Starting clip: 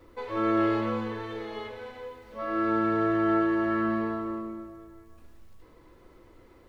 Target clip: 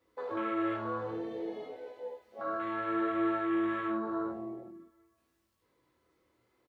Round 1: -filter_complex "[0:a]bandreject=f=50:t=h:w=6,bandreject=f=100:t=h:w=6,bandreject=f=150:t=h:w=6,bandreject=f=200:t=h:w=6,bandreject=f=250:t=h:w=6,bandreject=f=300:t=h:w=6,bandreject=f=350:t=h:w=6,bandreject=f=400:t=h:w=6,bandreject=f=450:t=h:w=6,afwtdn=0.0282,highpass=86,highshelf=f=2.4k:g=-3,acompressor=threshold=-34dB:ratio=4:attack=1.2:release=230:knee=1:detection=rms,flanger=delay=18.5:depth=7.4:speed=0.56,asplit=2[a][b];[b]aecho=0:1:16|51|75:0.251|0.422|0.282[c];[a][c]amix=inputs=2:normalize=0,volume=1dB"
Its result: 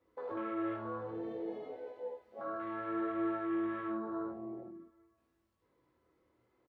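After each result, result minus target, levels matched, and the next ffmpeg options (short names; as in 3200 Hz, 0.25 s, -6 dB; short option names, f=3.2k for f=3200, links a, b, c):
4000 Hz band -5.5 dB; compressor: peak gain reduction +4 dB
-filter_complex "[0:a]bandreject=f=50:t=h:w=6,bandreject=f=100:t=h:w=6,bandreject=f=150:t=h:w=6,bandreject=f=200:t=h:w=6,bandreject=f=250:t=h:w=6,bandreject=f=300:t=h:w=6,bandreject=f=350:t=h:w=6,bandreject=f=400:t=h:w=6,bandreject=f=450:t=h:w=6,afwtdn=0.0282,highpass=86,highshelf=f=2.4k:g=8,acompressor=threshold=-34dB:ratio=4:attack=1.2:release=230:knee=1:detection=rms,flanger=delay=18.5:depth=7.4:speed=0.56,asplit=2[a][b];[b]aecho=0:1:16|51|75:0.251|0.422|0.282[c];[a][c]amix=inputs=2:normalize=0,volume=1dB"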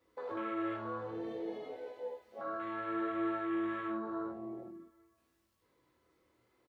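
compressor: peak gain reduction +4.5 dB
-filter_complex "[0:a]bandreject=f=50:t=h:w=6,bandreject=f=100:t=h:w=6,bandreject=f=150:t=h:w=6,bandreject=f=200:t=h:w=6,bandreject=f=250:t=h:w=6,bandreject=f=300:t=h:w=6,bandreject=f=350:t=h:w=6,bandreject=f=400:t=h:w=6,bandreject=f=450:t=h:w=6,afwtdn=0.0282,highpass=86,highshelf=f=2.4k:g=8,acompressor=threshold=-28dB:ratio=4:attack=1.2:release=230:knee=1:detection=rms,flanger=delay=18.5:depth=7.4:speed=0.56,asplit=2[a][b];[b]aecho=0:1:16|51|75:0.251|0.422|0.282[c];[a][c]amix=inputs=2:normalize=0,volume=1dB"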